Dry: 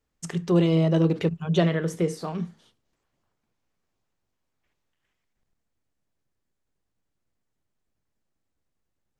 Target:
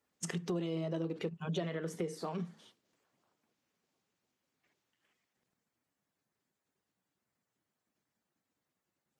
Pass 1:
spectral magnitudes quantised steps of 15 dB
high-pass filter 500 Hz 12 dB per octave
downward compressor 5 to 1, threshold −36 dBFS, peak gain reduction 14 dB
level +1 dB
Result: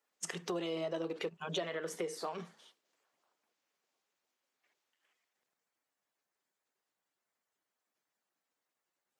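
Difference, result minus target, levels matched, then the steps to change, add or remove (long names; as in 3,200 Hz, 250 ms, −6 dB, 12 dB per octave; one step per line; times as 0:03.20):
125 Hz band −9.5 dB
change: high-pass filter 170 Hz 12 dB per octave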